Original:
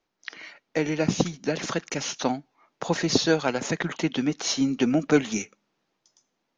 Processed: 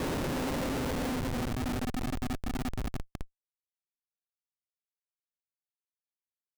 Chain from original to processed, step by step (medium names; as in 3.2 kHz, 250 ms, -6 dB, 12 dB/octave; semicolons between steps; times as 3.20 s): compression 20:1, threshold -23 dBFS, peak gain reduction 11.5 dB; Paulstretch 24×, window 0.10 s, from 2.23 s; Schmitt trigger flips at -26 dBFS